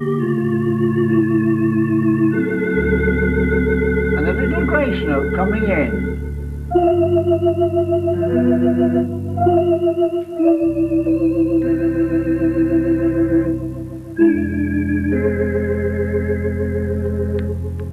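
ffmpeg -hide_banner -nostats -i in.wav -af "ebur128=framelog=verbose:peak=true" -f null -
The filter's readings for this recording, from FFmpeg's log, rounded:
Integrated loudness:
  I:         -17.5 LUFS
  Threshold: -27.6 LUFS
Loudness range:
  LRA:         2.1 LU
  Threshold: -37.4 LUFS
  LRA low:   -18.7 LUFS
  LRA high:  -16.6 LUFS
True peak:
  Peak:       -3.3 dBFS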